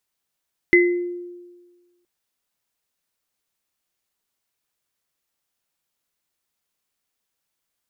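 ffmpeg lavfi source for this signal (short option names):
-f lavfi -i "aevalsrc='0.282*pow(10,-3*t/1.42)*sin(2*PI*352*t)+0.335*pow(10,-3*t/0.42)*sin(2*PI*2040*t)':d=1.32:s=44100"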